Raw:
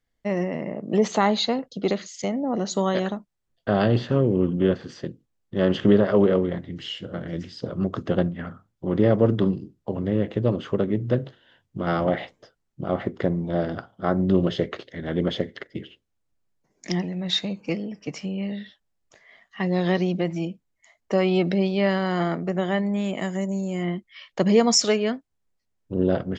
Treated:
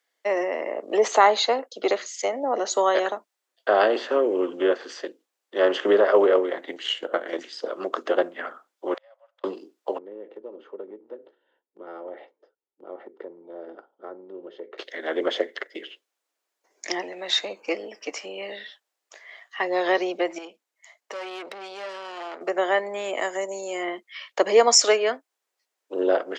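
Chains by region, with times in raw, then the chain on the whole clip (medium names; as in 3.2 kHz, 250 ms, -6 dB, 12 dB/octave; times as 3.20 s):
6.61–7.53 s: transient shaper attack +10 dB, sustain -3 dB + band-stop 5.2 kHz, Q 7.7
8.94–9.44 s: brick-wall FIR high-pass 510 Hz + inverted gate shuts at -31 dBFS, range -36 dB
9.98–14.78 s: band-pass filter 130 Hz, Q 1 + compression 2.5:1, threshold -32 dBFS + comb 2.2 ms, depth 35%
20.38–22.41 s: valve stage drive 25 dB, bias 0.55 + compression 2.5:1, threshold -38 dBFS
whole clip: Bessel high-pass 590 Hz, order 8; dynamic bell 4 kHz, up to -7 dB, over -48 dBFS, Q 0.81; trim +8 dB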